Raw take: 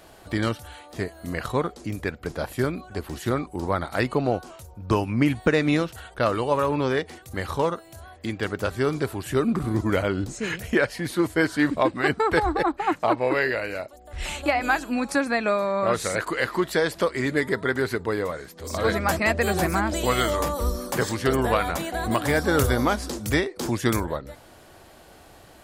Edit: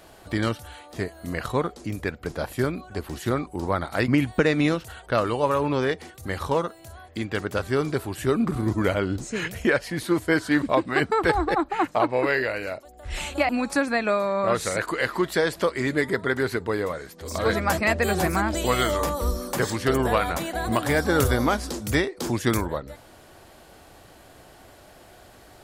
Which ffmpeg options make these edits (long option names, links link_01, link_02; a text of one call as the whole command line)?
ffmpeg -i in.wav -filter_complex "[0:a]asplit=3[link_01][link_02][link_03];[link_01]atrim=end=4.082[link_04];[link_02]atrim=start=5.158:end=14.572[link_05];[link_03]atrim=start=14.878[link_06];[link_04][link_05]acrossfade=duration=0.004:curve1=hsin:curve2=hsin[link_07];[link_07][link_06]acrossfade=duration=0.004:curve1=hsin:curve2=hsin" out.wav